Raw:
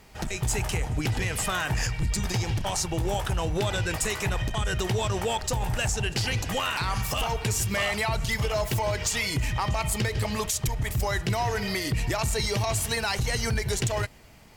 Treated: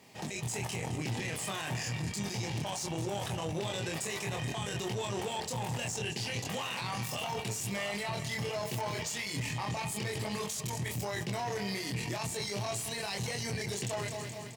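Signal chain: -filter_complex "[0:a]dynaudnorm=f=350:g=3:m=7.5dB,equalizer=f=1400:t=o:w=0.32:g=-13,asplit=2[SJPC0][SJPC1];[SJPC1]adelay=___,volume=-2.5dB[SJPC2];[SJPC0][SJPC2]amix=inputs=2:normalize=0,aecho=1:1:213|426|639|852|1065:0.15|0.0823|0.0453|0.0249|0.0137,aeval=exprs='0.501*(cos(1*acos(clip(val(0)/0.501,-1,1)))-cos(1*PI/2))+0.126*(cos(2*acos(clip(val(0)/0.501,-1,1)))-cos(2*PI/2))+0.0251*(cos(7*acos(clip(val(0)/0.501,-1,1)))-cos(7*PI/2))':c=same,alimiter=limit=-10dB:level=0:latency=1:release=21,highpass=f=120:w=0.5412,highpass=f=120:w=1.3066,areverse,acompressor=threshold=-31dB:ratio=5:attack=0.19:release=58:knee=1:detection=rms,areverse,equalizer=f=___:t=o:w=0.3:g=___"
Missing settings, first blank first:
25, 13000, -5.5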